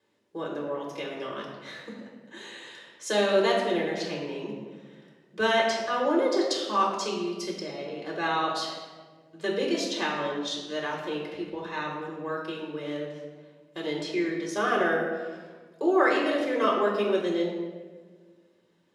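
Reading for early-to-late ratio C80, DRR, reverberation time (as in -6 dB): 4.5 dB, -2.5 dB, 1.5 s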